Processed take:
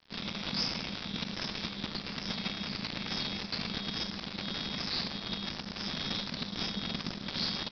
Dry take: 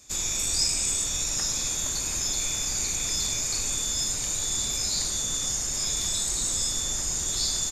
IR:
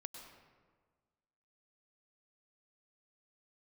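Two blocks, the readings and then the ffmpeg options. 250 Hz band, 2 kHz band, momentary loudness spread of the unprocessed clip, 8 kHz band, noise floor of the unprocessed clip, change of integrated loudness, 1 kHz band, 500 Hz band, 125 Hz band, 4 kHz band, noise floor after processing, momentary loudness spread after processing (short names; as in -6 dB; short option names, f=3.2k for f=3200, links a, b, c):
+5.5 dB, -0.5 dB, 2 LU, -31.5 dB, -30 dBFS, -10.0 dB, 0.0 dB, -1.0 dB, -2.0 dB, -4.5 dB, -44 dBFS, 4 LU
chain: -af "acontrast=41,aresample=11025,acrusher=bits=5:dc=4:mix=0:aa=0.000001,aresample=44100,aeval=exprs='val(0)*sin(2*PI*200*n/s)':c=same,volume=-6dB"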